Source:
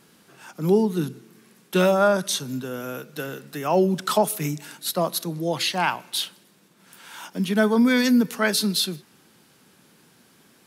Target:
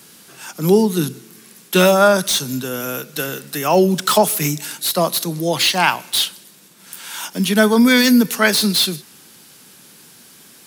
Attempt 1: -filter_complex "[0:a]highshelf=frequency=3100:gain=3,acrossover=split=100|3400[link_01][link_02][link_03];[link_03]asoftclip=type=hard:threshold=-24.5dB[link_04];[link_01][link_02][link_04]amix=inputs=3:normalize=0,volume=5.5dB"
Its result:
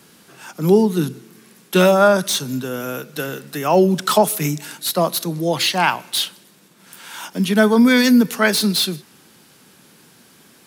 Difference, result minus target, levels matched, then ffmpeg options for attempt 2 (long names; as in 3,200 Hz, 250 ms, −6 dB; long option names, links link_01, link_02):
8,000 Hz band −2.5 dB
-filter_complex "[0:a]highshelf=frequency=3100:gain=11.5,acrossover=split=100|3400[link_01][link_02][link_03];[link_03]asoftclip=type=hard:threshold=-24.5dB[link_04];[link_01][link_02][link_04]amix=inputs=3:normalize=0,volume=5.5dB"